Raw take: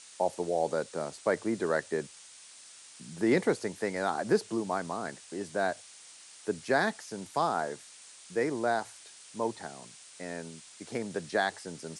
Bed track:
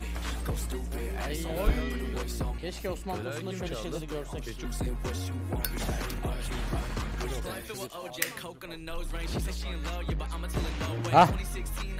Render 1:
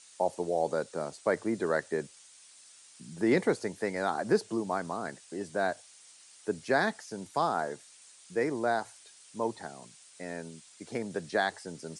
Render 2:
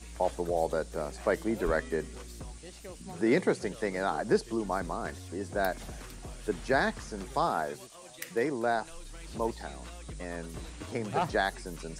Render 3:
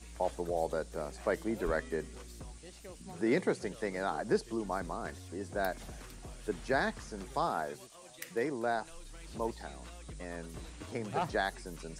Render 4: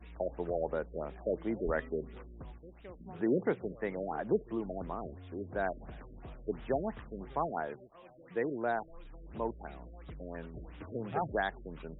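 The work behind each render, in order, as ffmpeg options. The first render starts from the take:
-af "afftdn=nr=6:nf=-52"
-filter_complex "[1:a]volume=0.266[s0];[0:a][s0]amix=inputs=2:normalize=0"
-af "volume=0.631"
-af "afftfilt=real='re*lt(b*sr/1024,630*pow(3900/630,0.5+0.5*sin(2*PI*2.9*pts/sr)))':imag='im*lt(b*sr/1024,630*pow(3900/630,0.5+0.5*sin(2*PI*2.9*pts/sr)))':win_size=1024:overlap=0.75"

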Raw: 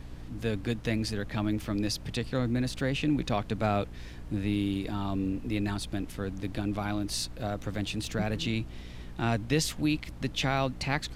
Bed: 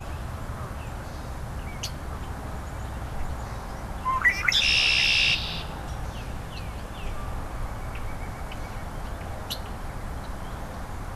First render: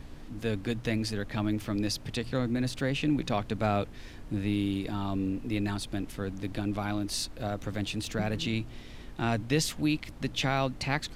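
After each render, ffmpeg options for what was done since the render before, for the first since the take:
-af "bandreject=f=60:t=h:w=4,bandreject=f=120:t=h:w=4,bandreject=f=180:t=h:w=4"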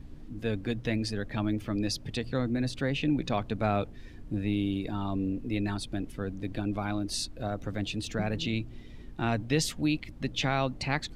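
-af "afftdn=nr=10:nf=-46"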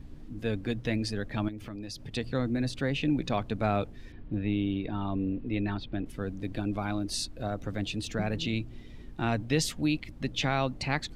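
-filter_complex "[0:a]asettb=1/sr,asplit=3[s0][s1][s2];[s0]atrim=end=1.484[s3];[s1]atrim=start=1.48:end=2.15,asetpts=PTS-STARTPTS,afade=t=in:d=0.004:c=qsin,afade=t=out:st=0.666:d=0.004:c=qsin,acompressor=threshold=0.0158:ratio=6:attack=3.2:release=140:knee=1:detection=peak[s4];[s2]atrim=start=2.146[s5];[s3][s4]acrossfade=d=0.004:c1=hsin:c2=qsin[s6];[s6][s5]acrossfade=d=0.004:c1=qsin:c2=hsin,asettb=1/sr,asplit=3[s7][s8][s9];[s7]atrim=end=4.124[s10];[s8]atrim=start=4.12:end=6.06,asetpts=PTS-STARTPTS,afade=t=in:d=0.004:c=qsin,afade=t=out:st=1.936:d=0.004:c=qsin,lowpass=f=3700:w=0.5412,lowpass=f=3700:w=1.3066[s11];[s9]atrim=start=6.056[s12];[s10][s11]acrossfade=d=0.004:c1=hsin:c2=qsin[s13];[s13][s12]acrossfade=d=0.004:c1=qsin:c2=hsin"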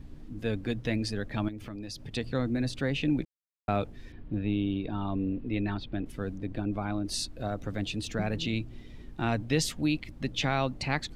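-filter_complex "[0:a]asettb=1/sr,asplit=3[s0][s1][s2];[s0]atrim=end=4.414[s3];[s1]atrim=start=4.41:end=5.09,asetpts=PTS-STARTPTS,afade=t=in:d=0.004:c=qsin,afade=t=out:st=0.676:d=0.004:c=qsin,equalizer=f=2000:t=o:w=0.27:g=-8[s4];[s2]atrim=start=5.086[s5];[s3][s4]acrossfade=d=0.004:c1=hsin:c2=qsin[s6];[s6][s5]acrossfade=d=0.004:c1=qsin:c2=hsin,asettb=1/sr,asplit=3[s7][s8][s9];[s7]atrim=end=6.384[s10];[s8]atrim=start=6.38:end=7.05,asetpts=PTS-STARTPTS,afade=t=in:d=0.004:c=qsin,afade=t=out:st=0.666:d=0.004:c=qsin,highshelf=f=3000:g=-11[s11];[s9]atrim=start=7.046[s12];[s10][s11]acrossfade=d=0.004:c1=hsin:c2=qsin[s13];[s13][s12]acrossfade=d=0.004:c1=qsin:c2=hsin,asplit=3[s14][s15][s16];[s14]atrim=end=3.25,asetpts=PTS-STARTPTS,afade=t=out:st=3.246:d=0.004:c=hsin[s17];[s15]atrim=start=3.25:end=3.68,asetpts=PTS-STARTPTS,volume=0[s18];[s16]atrim=start=3.68,asetpts=PTS-STARTPTS,afade=t=in:d=0.004:c=hsin[s19];[s17][s18][s19]concat=n=3:v=0:a=1"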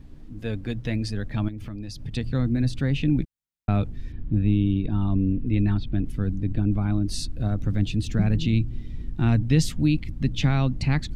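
-af "asubboost=boost=5:cutoff=240"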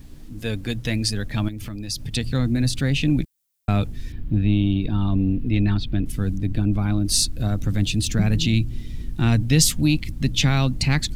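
-filter_complex "[0:a]asplit=2[s0][s1];[s1]asoftclip=type=tanh:threshold=0.133,volume=0.335[s2];[s0][s2]amix=inputs=2:normalize=0,crystalizer=i=4:c=0"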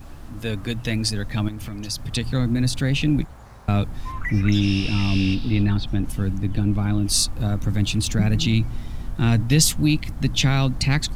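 -filter_complex "[1:a]volume=0.316[s0];[0:a][s0]amix=inputs=2:normalize=0"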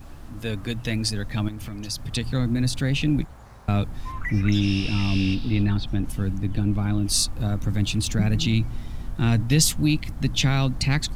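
-af "volume=0.794"

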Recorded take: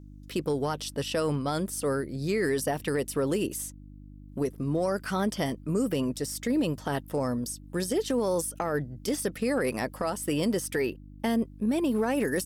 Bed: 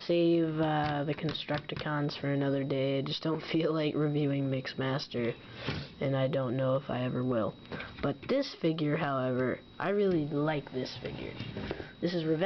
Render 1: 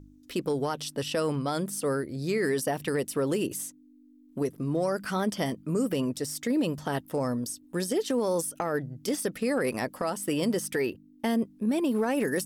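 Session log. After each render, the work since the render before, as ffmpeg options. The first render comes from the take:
-af "bandreject=f=50:t=h:w=4,bandreject=f=100:t=h:w=4,bandreject=f=150:t=h:w=4,bandreject=f=200:t=h:w=4"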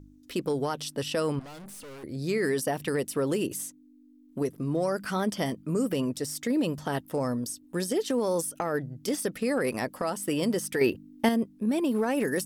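-filter_complex "[0:a]asettb=1/sr,asplit=3[s0][s1][s2];[s0]atrim=end=1.394[s3];[s1]atrim=start=1.39:end=2.04,asetpts=PTS-STARTPTS,afade=t=in:d=0.004:c=qsin,afade=t=out:st=0.646:d=0.004:c=qsin,aeval=exprs='(tanh(141*val(0)+0.3)-tanh(0.3))/141':c=same[s4];[s2]atrim=start=2.036[s5];[s3][s4]acrossfade=d=0.004:c1=hsin:c2=qsin[s6];[s6][s5]acrossfade=d=0.004:c1=qsin:c2=hsin,asettb=1/sr,asplit=3[s7][s8][s9];[s7]atrim=end=10.814[s10];[s8]atrim=start=10.81:end=11.29,asetpts=PTS-STARTPTS,afade=t=in:d=0.004:c=qsin,afade=t=out:st=0.476:d=0.004:c=qsin,acontrast=55[s11];[s9]atrim=start=11.286[s12];[s10][s11]acrossfade=d=0.004:c1=hsin:c2=qsin[s13];[s13][s12]acrossfade=d=0.004:c1=qsin:c2=hsin"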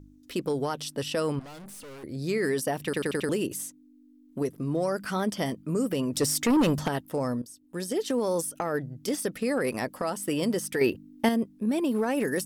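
-filter_complex "[0:a]asplit=3[s0][s1][s2];[s0]afade=t=out:st=6.12:d=0.02[s3];[s1]aeval=exprs='0.126*sin(PI/2*1.78*val(0)/0.126)':c=same,afade=t=in:st=6.12:d=0.02,afade=t=out:st=6.87:d=0.02[s4];[s2]afade=t=in:st=6.87:d=0.02[s5];[s3][s4][s5]amix=inputs=3:normalize=0,asplit=7[s6][s7][s8][s9][s10][s11][s12];[s6]atrim=end=2.932[s13];[s7]atrim=start=2.838:end=2.932[s14];[s8]atrim=start=2.838:end=2.932[s15];[s9]atrim=start=2.838:end=2.932[s16];[s10]atrim=start=2.838:end=2.932[s17];[s11]atrim=start=3.288:end=7.42,asetpts=PTS-STARTPTS,afade=t=out:st=4.128:d=0.004:c=hsin:silence=0.16788[s18];[s12]atrim=start=7.42,asetpts=PTS-STARTPTS,afade=t=in:d=0.64:silence=0.16788[s19];[s13][s14]acrossfade=d=0.004:c1=hsin:c2=hsin[s20];[s20][s15]acrossfade=d=0.004:c1=hsin:c2=hsin[s21];[s21][s16]acrossfade=d=0.004:c1=hsin:c2=hsin[s22];[s22][s17]acrossfade=d=0.004:c1=hsin:c2=hsin[s23];[s18][s19]concat=n=2:v=0:a=1[s24];[s23][s24]acrossfade=d=0.004:c1=hsin:c2=hsin"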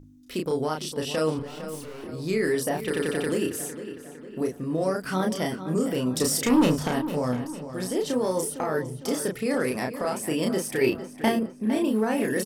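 -filter_complex "[0:a]asplit=2[s0][s1];[s1]adelay=32,volume=0.708[s2];[s0][s2]amix=inputs=2:normalize=0,asplit=2[s3][s4];[s4]adelay=456,lowpass=f=4200:p=1,volume=0.266,asplit=2[s5][s6];[s6]adelay=456,lowpass=f=4200:p=1,volume=0.51,asplit=2[s7][s8];[s8]adelay=456,lowpass=f=4200:p=1,volume=0.51,asplit=2[s9][s10];[s10]adelay=456,lowpass=f=4200:p=1,volume=0.51,asplit=2[s11][s12];[s12]adelay=456,lowpass=f=4200:p=1,volume=0.51[s13];[s3][s5][s7][s9][s11][s13]amix=inputs=6:normalize=0"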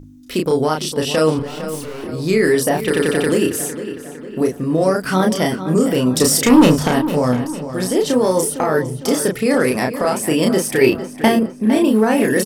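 -af "volume=3.16,alimiter=limit=0.794:level=0:latency=1"

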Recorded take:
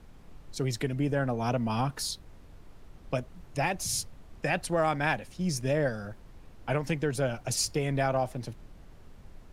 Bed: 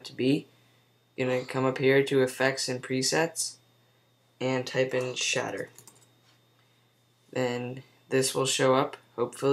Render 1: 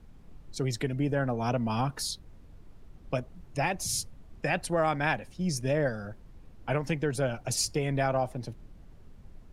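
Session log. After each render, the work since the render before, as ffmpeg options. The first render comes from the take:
-af "afftdn=nr=6:nf=-52"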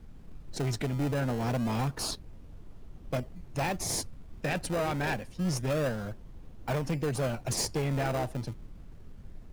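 -filter_complex "[0:a]asplit=2[s0][s1];[s1]acrusher=samples=27:mix=1:aa=0.000001:lfo=1:lforange=27:lforate=0.27,volume=0.501[s2];[s0][s2]amix=inputs=2:normalize=0,asoftclip=type=tanh:threshold=0.0596"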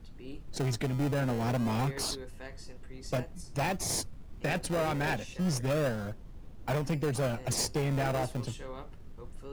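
-filter_complex "[1:a]volume=0.0891[s0];[0:a][s0]amix=inputs=2:normalize=0"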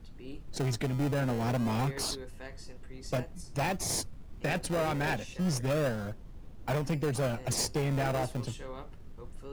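-af anull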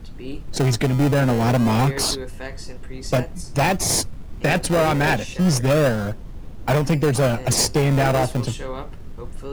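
-af "volume=3.98"

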